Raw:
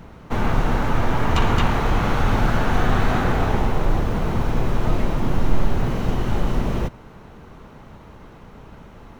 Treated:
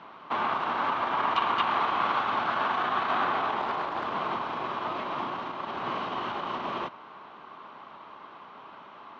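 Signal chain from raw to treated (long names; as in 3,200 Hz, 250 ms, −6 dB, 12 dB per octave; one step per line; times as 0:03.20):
brickwall limiter −14.5 dBFS, peak gain reduction 10 dB
loudspeaker in its box 470–4,100 Hz, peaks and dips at 480 Hz −8 dB, 1,100 Hz +9 dB, 1,900 Hz −3 dB, 3,200 Hz +3 dB
0:03.59–0:04.05: highs frequency-modulated by the lows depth 0.29 ms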